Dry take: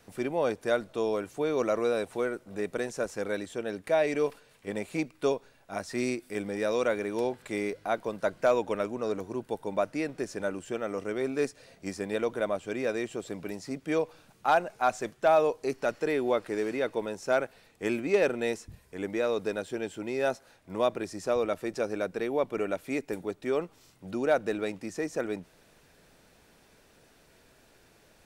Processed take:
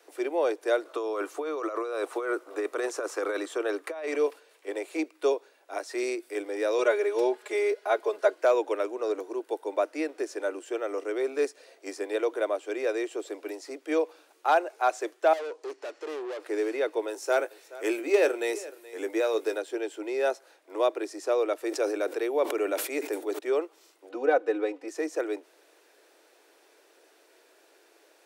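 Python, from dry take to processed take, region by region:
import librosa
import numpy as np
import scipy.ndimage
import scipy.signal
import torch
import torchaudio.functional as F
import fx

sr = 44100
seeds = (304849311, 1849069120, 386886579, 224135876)

y = fx.chain(x, sr, fx.peak_eq(hz=1200.0, db=11.0, octaves=0.49),
    fx.over_compress(threshold_db=-32.0, ratio=-1.0), at=(0.85, 4.16))
y = fx.chain(y, sr, fx.high_shelf(hz=10000.0, db=-4.0),
    fx.comb(ms=4.8, depth=0.97), at=(6.78, 8.35))
y = fx.chain(y, sr, fx.lowpass(hz=8400.0, slope=24),
    fx.tube_stage(drive_db=35.0, bias=0.6), at=(15.33, 16.4))
y = fx.chain(y, sr, fx.high_shelf(hz=8100.0, db=11.0),
    fx.doubler(ms=18.0, db=-10.5),
    fx.echo_single(ms=425, db=-18.5), at=(17.08, 19.58))
y = fx.chain(y, sr, fx.high_shelf(hz=7600.0, db=5.5),
    fx.sustainer(db_per_s=60.0), at=(21.58, 23.39))
y = fx.chain(y, sr, fx.lowpass(hz=1700.0, slope=6),
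    fx.comb(ms=4.0, depth=0.83), at=(24.09, 24.88))
y = scipy.signal.sosfilt(scipy.signal.butter(12, 310.0, 'highpass', fs=sr, output='sos'), y)
y = fx.low_shelf(y, sr, hz=410.0, db=5.5)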